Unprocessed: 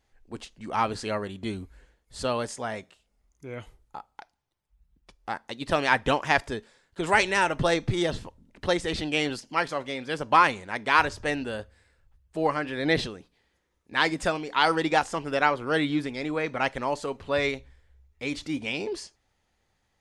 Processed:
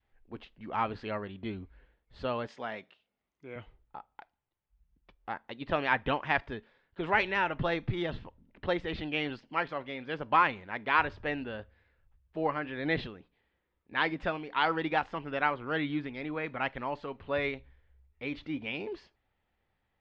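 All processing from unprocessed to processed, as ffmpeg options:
ffmpeg -i in.wav -filter_complex "[0:a]asettb=1/sr,asplit=3[link_01][link_02][link_03];[link_01]atrim=end=2.474[link_04];[link_02]atrim=start=2.47:end=3.56,asetpts=PTS-STARTPTS,afade=type=in:duration=0.004:curve=qsin,afade=type=out:start_time=1.086:duration=0.004:curve=qsin,highpass=160,lowpass=6100,aemphasis=mode=production:type=75fm[link_05];[link_03]atrim=start=3.556[link_06];[link_04][link_05]acrossfade=duration=0.004:curve1=hsin:curve2=qsin[link_07];[link_07][link_06]acrossfade=duration=0.004:curve1=qsin:curve2=hsin,lowpass=frequency=3300:width=0.5412,lowpass=frequency=3300:width=1.3066,adynamicequalizer=threshold=0.0141:dfrequency=490:dqfactor=1.2:tfrequency=490:tqfactor=1.2:attack=5:release=100:ratio=0.375:range=2:mode=cutabove:tftype=bell,volume=-5dB" out.wav

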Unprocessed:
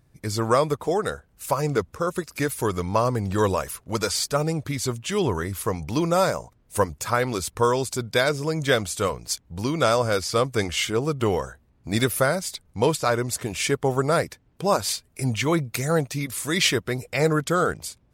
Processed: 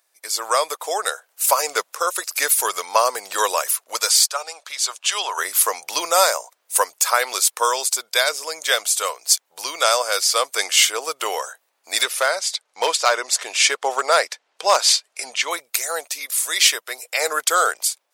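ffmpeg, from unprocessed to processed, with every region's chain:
ffmpeg -i in.wav -filter_complex "[0:a]asettb=1/sr,asplit=3[link_01][link_02][link_03];[link_01]atrim=end=4.264[link_04];[link_02]atrim=start=4.26:end=5.38,asetpts=PTS-STARTPTS,afade=type=in:duration=0.004:curve=qsin,afade=type=out:start_time=1.116:duration=0.004:curve=qsin,highpass=750,equalizer=frequency=2000:width=3.7:gain=-5.5,adynamicsmooth=sensitivity=0.5:basefreq=7400[link_05];[link_03]atrim=start=5.376[link_06];[link_04][link_05]acrossfade=duration=0.004:curve1=hsin:curve2=qsin[link_07];[link_07][link_06]acrossfade=duration=0.004:curve1=qsin:curve2=hsin,asettb=1/sr,asplit=3[link_08][link_09][link_10];[link_08]atrim=end=12.034[link_11];[link_09]atrim=start=12.03:end=15.51,asetpts=PTS-STARTPTS,afade=type=in:duration=0.004:curve=qsin,afade=type=out:start_time=3.476:duration=0.004:curve=qsin,lowpass=5900,asoftclip=type=hard:threshold=-12.5dB[link_12];[link_10]atrim=start=15.506[link_13];[link_11][link_12]acrossfade=duration=0.004:curve1=hsin:curve2=qsin[link_14];[link_14][link_13]acrossfade=duration=0.004:curve1=qsin:curve2=hsin,highpass=frequency=580:width=0.5412,highpass=frequency=580:width=1.3066,highshelf=frequency=3300:gain=12,dynaudnorm=framelen=220:gausssize=5:maxgain=11.5dB,volume=-1dB" out.wav

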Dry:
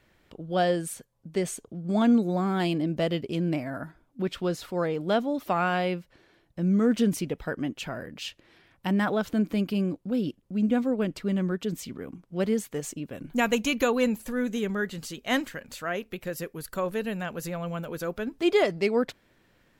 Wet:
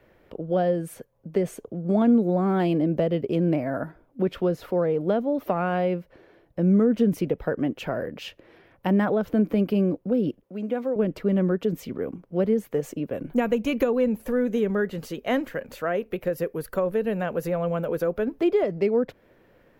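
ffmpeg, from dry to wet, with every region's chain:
ffmpeg -i in.wav -filter_complex "[0:a]asettb=1/sr,asplit=3[link_01][link_02][link_03];[link_01]atrim=end=10.434[link_04];[link_02]atrim=start=10.43:end=10.96,asetpts=PTS-STARTPTS,afade=type=in:duration=0.004:curve=qsin,afade=type=out:start_time=0.526:duration=0.004:curve=qsin,highpass=frequency=570:poles=1,acompressor=threshold=-36dB:ratio=1.5:attack=3.2:release=140:knee=1:detection=peak[link_05];[link_03]atrim=start=10.956[link_06];[link_04][link_05]acrossfade=duration=0.004:curve1=hsin:curve2=qsin[link_07];[link_07][link_06]acrossfade=duration=0.004:curve1=qsin:curve2=hsin,equalizer=frequency=500:width_type=o:width=1:gain=9,equalizer=frequency=4000:width_type=o:width=1:gain=-6,equalizer=frequency=8000:width_type=o:width=1:gain=-11,acrossover=split=230[link_08][link_09];[link_09]acompressor=threshold=-26dB:ratio=5[link_10];[link_08][link_10]amix=inputs=2:normalize=0,volume=3.5dB" out.wav

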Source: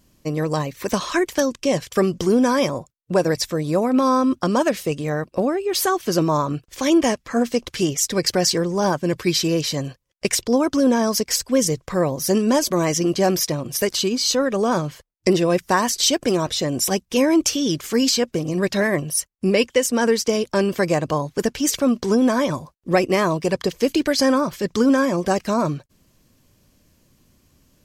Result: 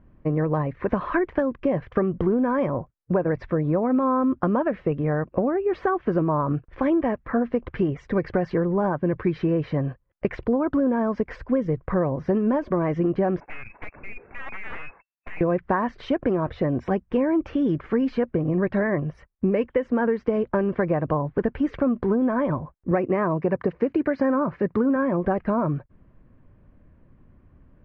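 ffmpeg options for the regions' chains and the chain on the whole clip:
ffmpeg -i in.wav -filter_complex "[0:a]asettb=1/sr,asplit=3[link_01][link_02][link_03];[link_01]atrim=end=13.404[link_04];[link_02]atrim=start=13.4:end=15.41,asetpts=PTS-STARTPTS,afade=type=in:duration=0.004:curve=qsin,afade=type=out:start_time=2.006:duration=0.004:curve=qsin,lowpass=frequency=2300:width_type=q:width=0.5098,lowpass=frequency=2300:width_type=q:width=0.6013,lowpass=frequency=2300:width_type=q:width=0.9,lowpass=frequency=2300:width_type=q:width=2.563,afreqshift=-2700,aeval=exprs='0.075*(abs(mod(val(0)/0.075+3,4)-2)-1)':channel_layout=same,aeval=exprs='(tanh(10*val(0)+0.7)-tanh(0.7))/10':channel_layout=same[link_05];[link_03]atrim=start=15.406[link_06];[link_04][link_05]acrossfade=duration=0.004:curve1=hsin:curve2=qsin[link_07];[link_07][link_06]acrossfade=duration=0.004:curve1=qsin:curve2=hsin,asettb=1/sr,asplit=3[link_08][link_09][link_10];[link_08]atrim=end=22.914[link_11];[link_09]atrim=start=22.91:end=24.96,asetpts=PTS-STARTPTS,afade=type=in:duration=0.004:curve=qsin,afade=type=out:start_time=2.046:duration=0.004:curve=qsin,highpass=94,bandreject=frequency=3300:width=6.1[link_12];[link_10]atrim=start=24.956[link_13];[link_11][link_12]acrossfade=duration=0.004:curve1=hsin:curve2=qsin[link_14];[link_14][link_13]acrossfade=duration=0.004:curve1=qsin:curve2=hsin,lowpass=frequency=1800:width=0.5412,lowpass=frequency=1800:width=1.3066,lowshelf=frequency=88:gain=9,acompressor=threshold=-20dB:ratio=6,volume=1.5dB" out.wav

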